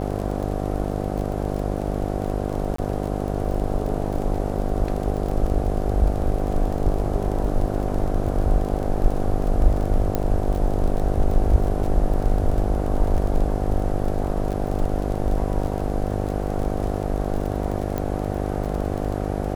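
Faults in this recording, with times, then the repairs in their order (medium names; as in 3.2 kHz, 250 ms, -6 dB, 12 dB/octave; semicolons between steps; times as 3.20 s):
buzz 50 Hz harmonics 15 -26 dBFS
crackle 34 per s -28 dBFS
2.76–2.78 s: dropout 24 ms
10.15 s: pop -10 dBFS
17.98 s: pop -13 dBFS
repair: de-click; de-hum 50 Hz, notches 15; interpolate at 2.76 s, 24 ms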